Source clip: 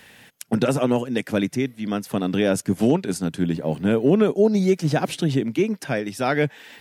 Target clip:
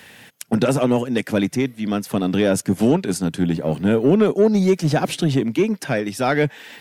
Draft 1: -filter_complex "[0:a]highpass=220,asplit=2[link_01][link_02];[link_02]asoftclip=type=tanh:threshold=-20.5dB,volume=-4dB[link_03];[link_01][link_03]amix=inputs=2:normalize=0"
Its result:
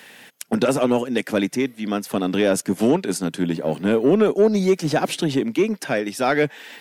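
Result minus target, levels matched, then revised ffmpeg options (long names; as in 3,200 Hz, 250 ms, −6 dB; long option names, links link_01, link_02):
125 Hz band −5.0 dB
-filter_complex "[0:a]highpass=60,asplit=2[link_01][link_02];[link_02]asoftclip=type=tanh:threshold=-20.5dB,volume=-4dB[link_03];[link_01][link_03]amix=inputs=2:normalize=0"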